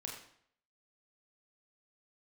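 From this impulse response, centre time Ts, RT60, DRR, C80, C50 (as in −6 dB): 38 ms, 0.65 s, −1.0 dB, 7.0 dB, 4.5 dB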